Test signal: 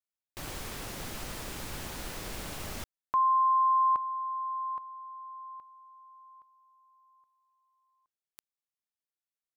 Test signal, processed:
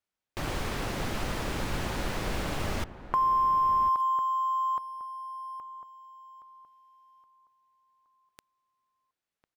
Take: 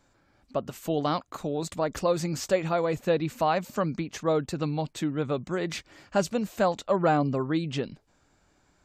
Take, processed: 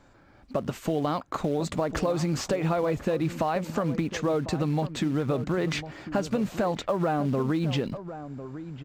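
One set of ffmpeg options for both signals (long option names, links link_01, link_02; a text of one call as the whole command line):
ffmpeg -i in.wav -filter_complex "[0:a]acompressor=threshold=-31dB:ratio=12:attack=7.1:release=87:knee=1:detection=rms,acrusher=bits=5:mode=log:mix=0:aa=0.000001,lowpass=frequency=2500:poles=1,asplit=2[link_01][link_02];[link_02]adelay=1050,volume=-12dB,highshelf=frequency=4000:gain=-23.6[link_03];[link_01][link_03]amix=inputs=2:normalize=0,volume=9dB" out.wav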